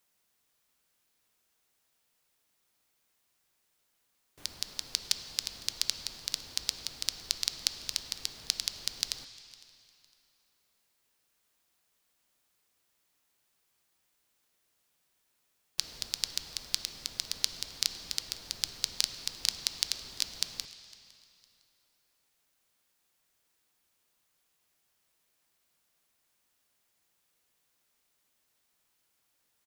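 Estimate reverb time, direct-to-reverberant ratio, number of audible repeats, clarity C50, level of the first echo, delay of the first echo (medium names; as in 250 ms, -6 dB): 2.7 s, 9.5 dB, 1, 10.5 dB, -24.0 dB, 507 ms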